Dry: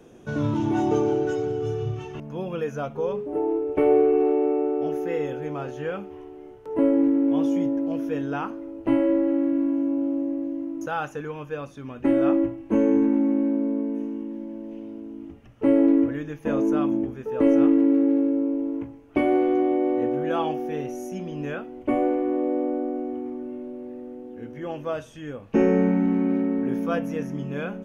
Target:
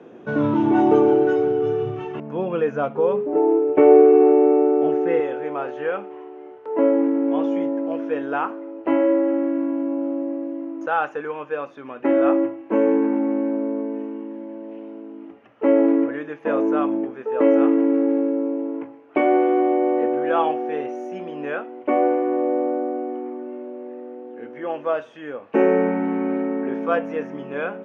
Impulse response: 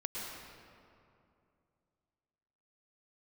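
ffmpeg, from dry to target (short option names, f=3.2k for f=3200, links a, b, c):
-af "asetnsamples=n=441:p=0,asendcmd='5.2 highpass f 430',highpass=220,lowpass=2.2k,volume=7.5dB"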